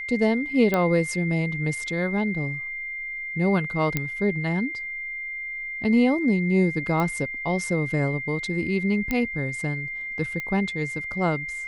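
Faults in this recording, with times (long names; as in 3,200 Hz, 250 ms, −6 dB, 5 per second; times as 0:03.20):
whistle 2,100 Hz −30 dBFS
0:00.74: click −10 dBFS
0:03.97: click −9 dBFS
0:07.00: click −14 dBFS
0:09.11: click −12 dBFS
0:10.40: click −18 dBFS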